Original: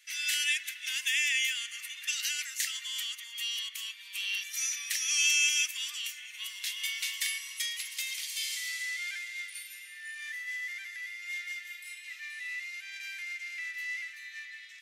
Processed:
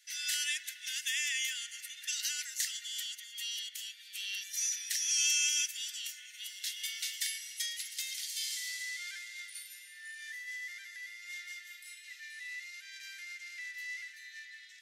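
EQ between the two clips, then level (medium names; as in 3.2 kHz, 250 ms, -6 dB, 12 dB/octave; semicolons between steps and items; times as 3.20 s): rippled Chebyshev high-pass 1.4 kHz, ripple 3 dB; peaking EQ 2.3 kHz -8 dB 0.53 oct; 0.0 dB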